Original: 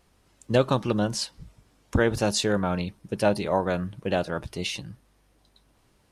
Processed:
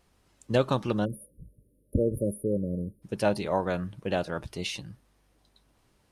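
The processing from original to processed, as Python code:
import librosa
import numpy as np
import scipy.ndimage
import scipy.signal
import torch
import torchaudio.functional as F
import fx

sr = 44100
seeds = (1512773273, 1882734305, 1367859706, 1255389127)

y = fx.spec_erase(x, sr, start_s=1.05, length_s=1.97, low_hz=620.0, high_hz=9200.0)
y = y * librosa.db_to_amplitude(-3.0)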